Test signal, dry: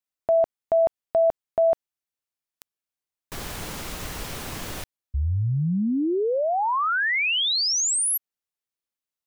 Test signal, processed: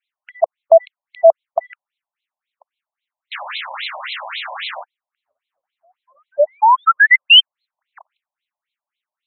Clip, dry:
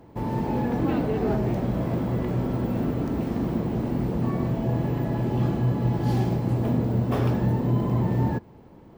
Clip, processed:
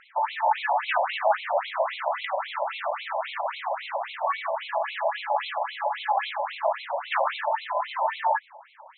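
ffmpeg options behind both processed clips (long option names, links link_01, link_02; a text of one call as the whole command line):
ffmpeg -i in.wav -af "aemphasis=mode=production:type=75fm,acontrast=84,afftfilt=real='re*between(b*sr/1024,730*pow(3000/730,0.5+0.5*sin(2*PI*3.7*pts/sr))/1.41,730*pow(3000/730,0.5+0.5*sin(2*PI*3.7*pts/sr))*1.41)':imag='im*between(b*sr/1024,730*pow(3000/730,0.5+0.5*sin(2*PI*3.7*pts/sr))/1.41,730*pow(3000/730,0.5+0.5*sin(2*PI*3.7*pts/sr))*1.41)':win_size=1024:overlap=0.75,volume=7.5dB" out.wav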